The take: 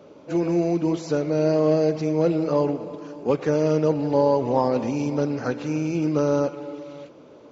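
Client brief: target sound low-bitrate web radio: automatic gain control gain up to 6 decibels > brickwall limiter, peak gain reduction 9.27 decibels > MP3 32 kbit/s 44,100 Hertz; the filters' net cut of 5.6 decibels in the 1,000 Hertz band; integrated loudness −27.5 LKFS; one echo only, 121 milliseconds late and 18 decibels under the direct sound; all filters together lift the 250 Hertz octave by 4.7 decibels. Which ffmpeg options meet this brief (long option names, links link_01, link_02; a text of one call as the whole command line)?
ffmpeg -i in.wav -af "equalizer=frequency=250:width_type=o:gain=7,equalizer=frequency=1000:width_type=o:gain=-7.5,aecho=1:1:121:0.126,dynaudnorm=maxgain=6dB,alimiter=limit=-17dB:level=0:latency=1,volume=-1.5dB" -ar 44100 -c:a libmp3lame -b:a 32k out.mp3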